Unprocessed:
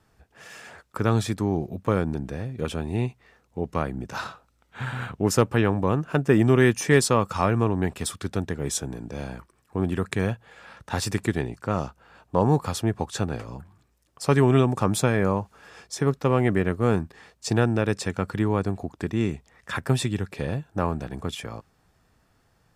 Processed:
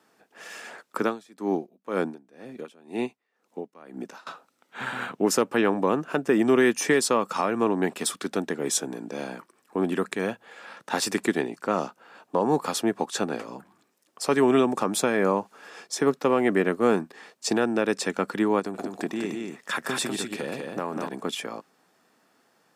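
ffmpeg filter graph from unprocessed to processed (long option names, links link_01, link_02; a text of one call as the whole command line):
ffmpeg -i in.wav -filter_complex "[0:a]asettb=1/sr,asplit=3[link_01][link_02][link_03];[link_01]atrim=end=1.024[link_04];[link_02]atrim=start=1.02:end=4.27,asetpts=PTS-STARTPTS,afade=type=in:duration=0.004:curve=qsin,afade=type=out:start_time=3.246:duration=0.004:curve=qsin,highpass=150,aeval=exprs='val(0)*pow(10,-26*(0.5-0.5*cos(2*PI*2*n/s))/20)':channel_layout=same[link_05];[link_03]atrim=start=4.266[link_06];[link_04][link_05]acrossfade=duration=0.004:curve1=hsin:curve2=qsin[link_07];[link_07][link_06]acrossfade=duration=0.004:curve1=qsin:curve2=hsin,asettb=1/sr,asplit=3[link_08][link_09][link_10];[link_08]atrim=end=18.594[link_11];[link_09]atrim=start=18.59:end=21.09,asetpts=PTS-STARTPTS,afade=type=in:duration=0.004:curve=qsin,afade=type=out:start_time=2.496:duration=0.004:curve=qsin,highshelf=frequency=5400:gain=4.5,acompressor=threshold=-26dB:ratio=3:attack=3.2:release=140:knee=1:detection=peak,aecho=1:1:151|197:0.188|0.631,atrim=end_sample=110250[link_12];[link_10]atrim=start=21.086[link_13];[link_11][link_12]acrossfade=duration=0.004:curve1=hsin:curve2=qsin[link_14];[link_14][link_13]acrossfade=duration=0.004:curve1=qsin:curve2=hsin,highpass=frequency=220:width=0.5412,highpass=frequency=220:width=1.3066,alimiter=limit=-13.5dB:level=0:latency=1:release=260,volume=3dB" out.wav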